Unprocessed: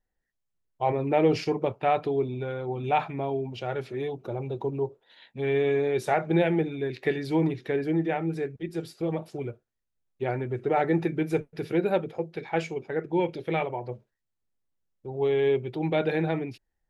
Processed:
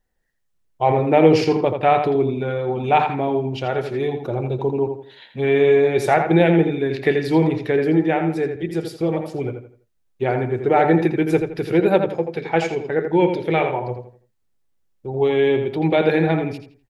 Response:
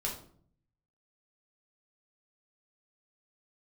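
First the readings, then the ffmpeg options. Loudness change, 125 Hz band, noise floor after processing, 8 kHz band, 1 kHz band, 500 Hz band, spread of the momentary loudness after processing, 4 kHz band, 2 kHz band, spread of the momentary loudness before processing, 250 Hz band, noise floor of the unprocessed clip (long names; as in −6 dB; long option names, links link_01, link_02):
+8.5 dB, +8.0 dB, −67 dBFS, can't be measured, +9.0 dB, +8.5 dB, 11 LU, +8.5 dB, +9.0 dB, 10 LU, +9.0 dB, −81 dBFS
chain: -filter_complex "[0:a]asplit=2[link_01][link_02];[link_02]adelay=83,lowpass=frequency=3700:poles=1,volume=-6.5dB,asplit=2[link_03][link_04];[link_04]adelay=83,lowpass=frequency=3700:poles=1,volume=0.33,asplit=2[link_05][link_06];[link_06]adelay=83,lowpass=frequency=3700:poles=1,volume=0.33,asplit=2[link_07][link_08];[link_08]adelay=83,lowpass=frequency=3700:poles=1,volume=0.33[link_09];[link_01][link_03][link_05][link_07][link_09]amix=inputs=5:normalize=0,volume=8dB"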